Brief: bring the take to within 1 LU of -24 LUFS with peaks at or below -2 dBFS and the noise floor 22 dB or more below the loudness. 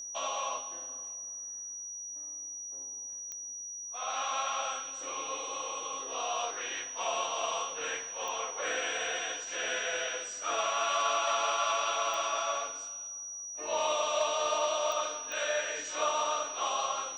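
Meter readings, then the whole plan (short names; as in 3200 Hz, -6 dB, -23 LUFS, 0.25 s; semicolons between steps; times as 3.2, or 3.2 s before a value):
clicks 5; steady tone 5800 Hz; tone level -39 dBFS; loudness -33.0 LUFS; peak -17.5 dBFS; loudness target -24.0 LUFS
-> de-click; notch 5800 Hz, Q 30; gain +9 dB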